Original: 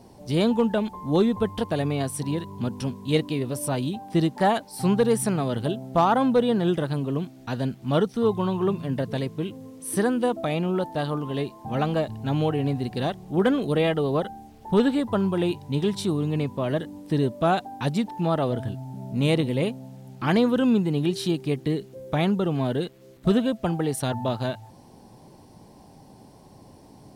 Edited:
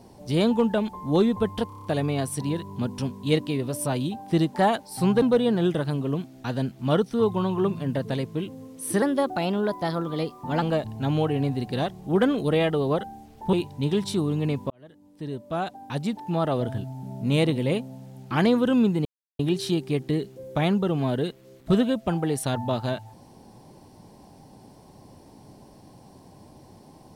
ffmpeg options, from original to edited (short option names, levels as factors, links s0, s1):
-filter_complex "[0:a]asplit=13[s0][s1][s2][s3][s4][s5][s6][s7][s8][s9][s10][s11][s12];[s0]atrim=end=1.702[s13];[s1]atrim=start=1.668:end=1.702[s14];[s2]atrim=start=1.668:end=1.702[s15];[s3]atrim=start=1.668:end=1.702[s16];[s4]atrim=start=1.668:end=1.702[s17];[s5]atrim=start=1.668:end=1.702[s18];[s6]atrim=start=1.668:end=5.042[s19];[s7]atrim=start=6.248:end=10.054[s20];[s8]atrim=start=10.05:end=11.86,asetpts=PTS-STARTPTS,asetrate=49833,aresample=44100,atrim=end_sample=70638,asetpts=PTS-STARTPTS[s21];[s9]atrim=start=11.856:end=14.772[s22];[s10]atrim=start=15.438:end=16.61,asetpts=PTS-STARTPTS,afade=t=out:st=1.168:d=0.004:c=hsin[s23];[s11]atrim=start=16.61:end=20.96,asetpts=PTS-STARTPTS,afade=t=in:d=1.95,afade=t=out:st=4.346:d=0.004:c=hsin,apad=pad_dur=0.34[s24];[s12]atrim=start=20.96,asetpts=PTS-STARTPTS,afade=t=in:d=0.004:c=hsin[s25];[s13][s14]acrossfade=d=0.004:c1=hsin:c2=hsin[s26];[s26][s15]acrossfade=d=0.004:c1=hsin:c2=hsin[s27];[s27][s16]acrossfade=d=0.004:c1=hsin:c2=hsin[s28];[s28][s17]acrossfade=d=0.004:c1=hsin:c2=hsin[s29];[s29][s18]acrossfade=d=0.004:c1=hsin:c2=hsin[s30];[s30][s19]acrossfade=d=0.004:c1=hsin:c2=hsin[s31];[s31][s20]acrossfade=d=0.004:c1=hsin:c2=hsin[s32];[s32][s21]acrossfade=d=0.004:c1=hsin:c2=hsin[s33];[s33][s22]acrossfade=d=0.004:c1=hsin:c2=hsin[s34];[s23][s24][s25]concat=n=3:v=0:a=1[s35];[s34][s35]acrossfade=d=0.004:c1=hsin:c2=hsin"